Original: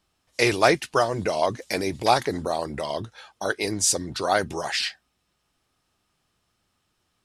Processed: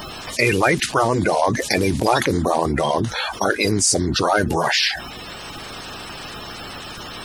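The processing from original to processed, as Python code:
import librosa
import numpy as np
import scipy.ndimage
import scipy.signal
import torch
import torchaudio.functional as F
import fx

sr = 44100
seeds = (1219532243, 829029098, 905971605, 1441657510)

y = fx.spec_quant(x, sr, step_db=30)
y = fx.env_flatten(y, sr, amount_pct=70)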